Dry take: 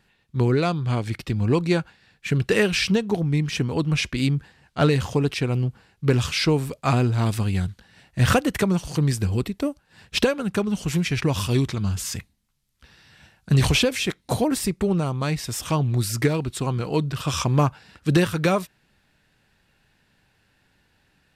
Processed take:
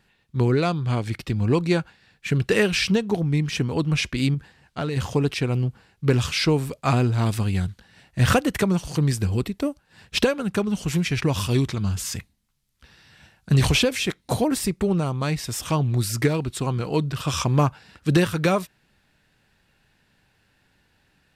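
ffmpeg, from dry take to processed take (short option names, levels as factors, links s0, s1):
-filter_complex "[0:a]asettb=1/sr,asplit=3[s0][s1][s2];[s0]atrim=end=4.344[s3];[s1]atrim=start=4.34:end=4.97,asetpts=PTS-STARTPTS,afade=t=in:d=0.004:c=qsin,afade=t=out:st=0.626:d=0.004:c=qsin,acompressor=threshold=0.0708:ratio=6:attack=3.2:release=140:knee=1:detection=peak[s4];[s2]atrim=start=4.966[s5];[s3][s4]acrossfade=d=0.004:c1=hsin:c2=qsin[s6];[s6][s5]acrossfade=d=0.004:c1=qsin:c2=hsin"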